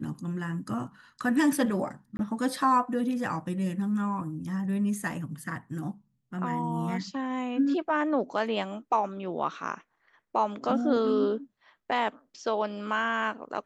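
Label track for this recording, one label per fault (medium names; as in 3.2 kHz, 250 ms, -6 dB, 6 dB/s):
2.170000	2.190000	dropout 21 ms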